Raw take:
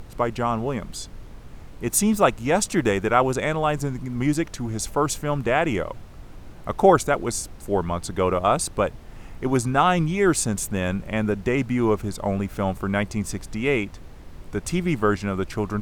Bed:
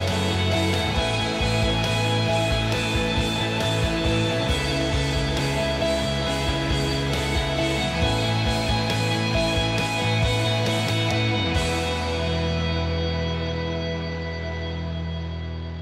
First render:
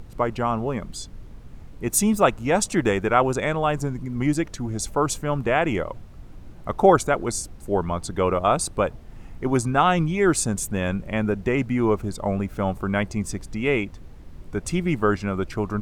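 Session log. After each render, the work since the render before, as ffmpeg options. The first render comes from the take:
-af "afftdn=nr=6:nf=-42"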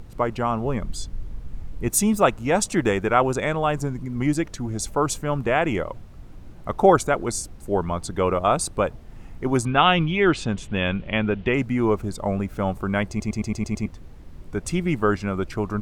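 -filter_complex "[0:a]asettb=1/sr,asplit=3[a][b][c];[a]atrim=end=0.644[d];[b]atrim=start=0.64:end=1.89,asetpts=PTS-STARTPTS,afade=t=in:d=0.004:c=qsin,afade=t=out:st=1.246:d=0.004:c=qsin,lowshelf=f=83:g=11[e];[c]atrim=start=1.886[f];[d][e]acrossfade=d=0.004:c1=hsin:c2=qsin[g];[g][f]acrossfade=d=0.004:c1=qsin:c2=hsin,asettb=1/sr,asplit=3[h][i][j];[h]atrim=end=9.654[k];[i]atrim=start=9.65:end=11.54,asetpts=PTS-STARTPTS,afade=t=in:d=0.004:c=qsin,afade=t=out:st=1.886:d=0.004:c=qsin,lowpass=f=3.1k:t=q:w=3.5[l];[j]atrim=start=11.536[m];[k][l]acrossfade=d=0.004:c1=hsin:c2=qsin[n];[n][m]acrossfade=d=0.004:c1=qsin:c2=hsin,asplit=8[o][p][q][r][s][t][u][v];[o]atrim=end=13.202[w];[p]atrim=start=13.088:end=13.202[x];[q]atrim=start=13.088:end=13.202[y];[r]atrim=start=13.088:end=13.202[z];[s]atrim=start=13.088:end=13.202[aa];[t]atrim=start=13.088:end=13.202[ab];[u]atrim=start=13.088:end=13.202[ac];[v]atrim=start=13.858[ad];[w][x]acrossfade=d=0.004:c1=hsin:c2=hsin[ae];[ae][y]acrossfade=d=0.004:c1=hsin:c2=hsin[af];[af][z]acrossfade=d=0.004:c1=hsin:c2=hsin[ag];[ag][aa]acrossfade=d=0.004:c1=hsin:c2=hsin[ah];[ah][ab]acrossfade=d=0.004:c1=hsin:c2=hsin[ai];[ai][ac]acrossfade=d=0.004:c1=hsin:c2=hsin[aj];[aj][ad]acrossfade=d=0.004:c1=hsin:c2=hsin"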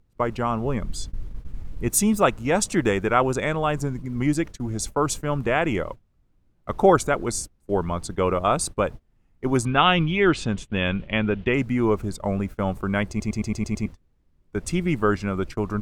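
-af "agate=range=-23dB:threshold=-31dB:ratio=16:detection=peak,equalizer=f=740:w=2:g=-2.5"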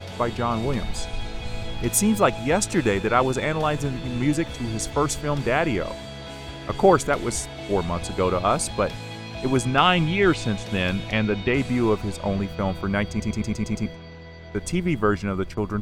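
-filter_complex "[1:a]volume=-12.5dB[a];[0:a][a]amix=inputs=2:normalize=0"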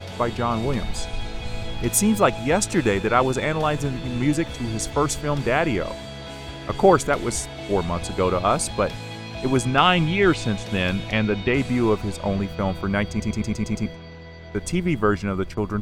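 -af "volume=1dB"

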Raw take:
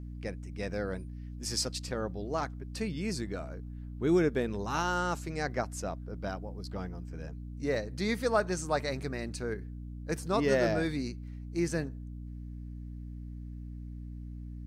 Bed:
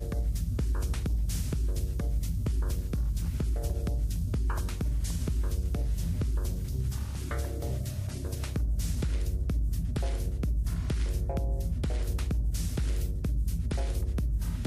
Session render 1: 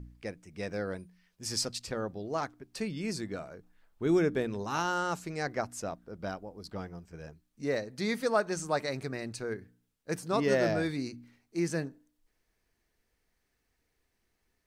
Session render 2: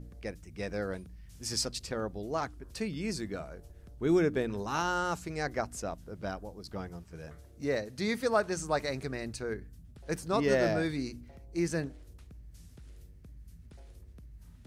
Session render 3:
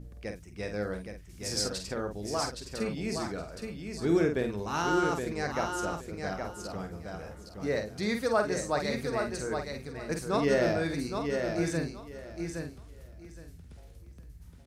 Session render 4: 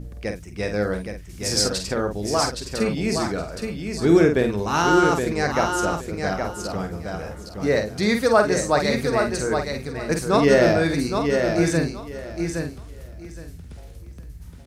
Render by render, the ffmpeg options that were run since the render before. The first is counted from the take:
-af "bandreject=f=60:t=h:w=4,bandreject=f=120:t=h:w=4,bandreject=f=180:t=h:w=4,bandreject=f=240:t=h:w=4,bandreject=f=300:t=h:w=4"
-filter_complex "[1:a]volume=-21.5dB[a];[0:a][a]amix=inputs=2:normalize=0"
-filter_complex "[0:a]asplit=2[a][b];[b]adelay=48,volume=-6.5dB[c];[a][c]amix=inputs=2:normalize=0,asplit=2[d][e];[e]aecho=0:1:818|1636|2454:0.531|0.106|0.0212[f];[d][f]amix=inputs=2:normalize=0"
-af "volume=10dB"

